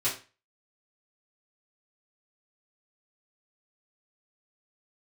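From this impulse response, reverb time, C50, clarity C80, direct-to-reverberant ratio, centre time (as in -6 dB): 0.30 s, 8.0 dB, 13.5 dB, -10.5 dB, 27 ms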